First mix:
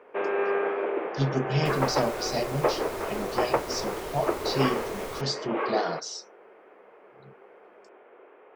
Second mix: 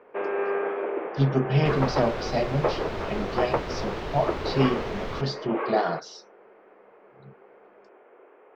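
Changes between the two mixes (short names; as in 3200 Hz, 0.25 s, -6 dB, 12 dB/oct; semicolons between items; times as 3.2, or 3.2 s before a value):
speech +4.5 dB; second sound +9.0 dB; master: add air absorption 230 m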